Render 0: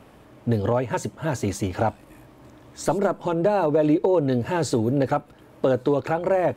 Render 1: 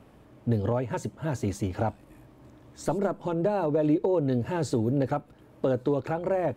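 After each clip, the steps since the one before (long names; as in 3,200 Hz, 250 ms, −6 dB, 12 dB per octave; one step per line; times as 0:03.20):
low-shelf EQ 430 Hz +6 dB
level −8 dB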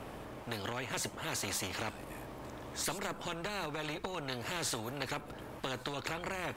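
every bin compressed towards the loudest bin 4 to 1
level −5.5 dB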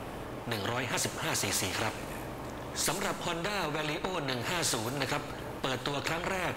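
dense smooth reverb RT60 2.3 s, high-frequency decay 0.75×, DRR 9 dB
level +5.5 dB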